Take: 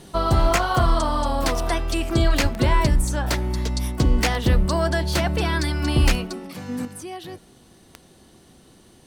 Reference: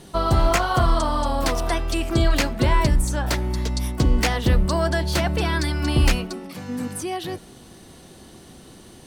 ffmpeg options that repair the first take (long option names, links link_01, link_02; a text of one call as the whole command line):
ffmpeg -i in.wav -filter_complex "[0:a]adeclick=threshold=4,asplit=3[link_01][link_02][link_03];[link_01]afade=type=out:start_time=2.42:duration=0.02[link_04];[link_02]highpass=frequency=140:width=0.5412,highpass=frequency=140:width=1.3066,afade=type=in:start_time=2.42:duration=0.02,afade=type=out:start_time=2.54:duration=0.02[link_05];[link_03]afade=type=in:start_time=2.54:duration=0.02[link_06];[link_04][link_05][link_06]amix=inputs=3:normalize=0,asetnsamples=nb_out_samples=441:pad=0,asendcmd='6.85 volume volume 6.5dB',volume=0dB" out.wav